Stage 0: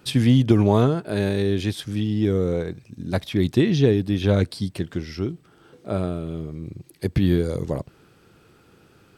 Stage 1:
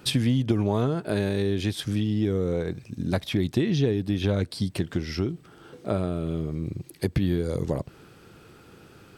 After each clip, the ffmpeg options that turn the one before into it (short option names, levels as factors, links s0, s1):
-af "acompressor=threshold=0.0447:ratio=3,volume=1.58"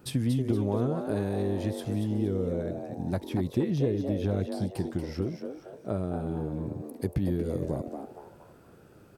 -filter_complex "[0:a]equalizer=f=3300:w=0.53:g=-10,asplit=2[s0][s1];[s1]asplit=4[s2][s3][s4][s5];[s2]adelay=234,afreqshift=140,volume=0.422[s6];[s3]adelay=468,afreqshift=280,volume=0.148[s7];[s4]adelay=702,afreqshift=420,volume=0.0519[s8];[s5]adelay=936,afreqshift=560,volume=0.018[s9];[s6][s7][s8][s9]amix=inputs=4:normalize=0[s10];[s0][s10]amix=inputs=2:normalize=0,volume=0.631"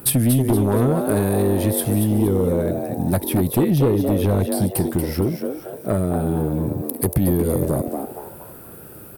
-af "aexciter=amount=10.8:drive=3.9:freq=9200,aeval=exprs='0.266*sin(PI/2*2.51*val(0)/0.266)':c=same"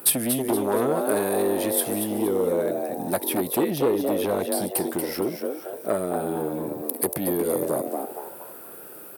-af "highpass=370"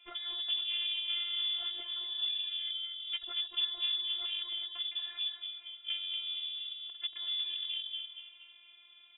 -af "afftfilt=real='hypot(re,im)*cos(PI*b)':imag='0':win_size=512:overlap=0.75,lowpass=f=3200:t=q:w=0.5098,lowpass=f=3200:t=q:w=0.6013,lowpass=f=3200:t=q:w=0.9,lowpass=f=3200:t=q:w=2.563,afreqshift=-3800,volume=0.376"